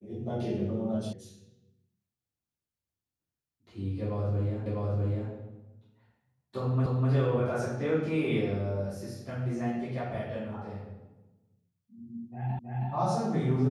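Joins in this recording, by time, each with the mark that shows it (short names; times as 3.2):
1.13 sound cut off
4.66 repeat of the last 0.65 s
6.86 repeat of the last 0.25 s
12.59 repeat of the last 0.32 s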